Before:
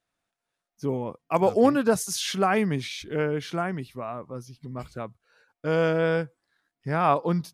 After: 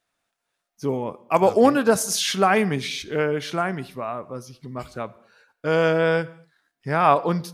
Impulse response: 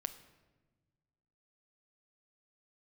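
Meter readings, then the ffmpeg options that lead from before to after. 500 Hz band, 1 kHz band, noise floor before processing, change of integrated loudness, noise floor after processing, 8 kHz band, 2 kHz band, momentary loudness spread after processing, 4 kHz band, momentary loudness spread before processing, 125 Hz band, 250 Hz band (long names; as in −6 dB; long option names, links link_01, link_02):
+4.0 dB, +5.0 dB, below −85 dBFS, +4.0 dB, −80 dBFS, +6.0 dB, +5.5 dB, 18 LU, +6.0 dB, 18 LU, +1.0 dB, +2.0 dB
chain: -filter_complex "[0:a]asplit=2[link_01][link_02];[link_02]highpass=frequency=480:poles=1[link_03];[1:a]atrim=start_sample=2205,afade=type=out:start_time=0.39:duration=0.01,atrim=end_sample=17640,asetrate=57330,aresample=44100[link_04];[link_03][link_04]afir=irnorm=-1:irlink=0,volume=3.5dB[link_05];[link_01][link_05]amix=inputs=2:normalize=0"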